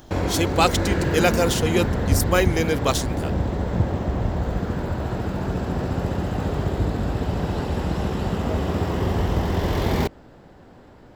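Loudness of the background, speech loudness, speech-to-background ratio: −24.5 LKFS, −23.0 LKFS, 1.5 dB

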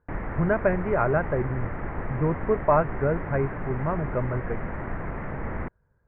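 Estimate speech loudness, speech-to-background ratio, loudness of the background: −26.5 LKFS, 7.5 dB, −34.0 LKFS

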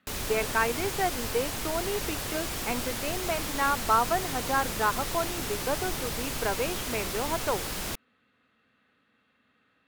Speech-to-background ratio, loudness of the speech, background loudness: 1.5 dB, −31.0 LKFS, −32.5 LKFS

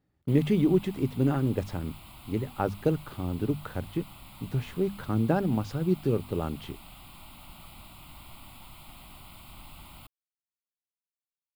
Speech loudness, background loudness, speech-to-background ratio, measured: −29.0 LKFS, −48.5 LKFS, 19.5 dB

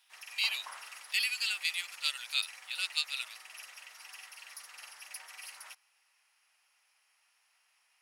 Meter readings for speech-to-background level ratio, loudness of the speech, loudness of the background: 14.0 dB, −33.0 LKFS, −47.0 LKFS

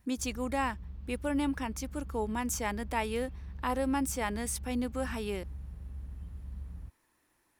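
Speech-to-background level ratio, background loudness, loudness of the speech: 11.0 dB, −45.0 LKFS, −34.0 LKFS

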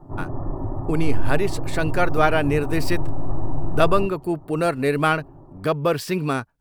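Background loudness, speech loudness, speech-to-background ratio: −31.0 LKFS, −23.0 LKFS, 8.0 dB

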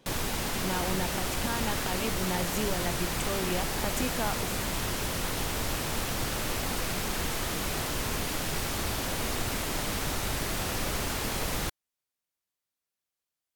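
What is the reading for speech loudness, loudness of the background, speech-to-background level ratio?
−35.0 LKFS, −31.0 LKFS, −4.0 dB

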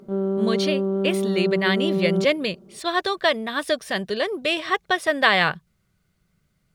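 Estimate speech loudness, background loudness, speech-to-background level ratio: −23.0 LKFS, −24.5 LKFS, 1.5 dB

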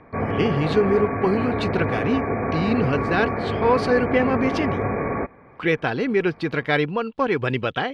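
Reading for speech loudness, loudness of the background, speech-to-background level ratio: −23.0 LKFS, −25.5 LKFS, 2.5 dB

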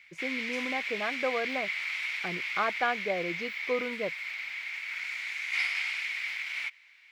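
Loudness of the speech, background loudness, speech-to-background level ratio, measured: −34.0 LKFS, −32.5 LKFS, −1.5 dB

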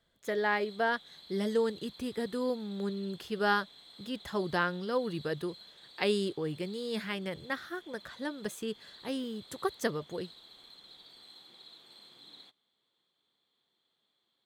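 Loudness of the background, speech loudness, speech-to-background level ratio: −52.0 LKFS, −34.5 LKFS, 17.5 dB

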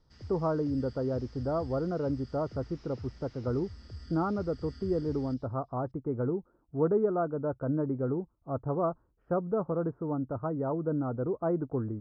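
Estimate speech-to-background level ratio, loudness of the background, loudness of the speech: 16.0 dB, −48.5 LKFS, −32.5 LKFS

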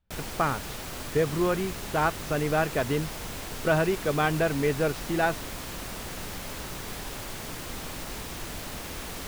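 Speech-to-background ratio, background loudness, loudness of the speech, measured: 9.0 dB, −36.5 LKFS, −27.5 LKFS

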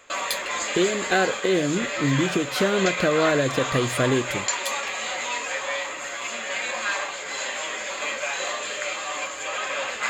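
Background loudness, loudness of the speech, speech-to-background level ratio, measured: −27.5 LKFS, −24.5 LKFS, 3.0 dB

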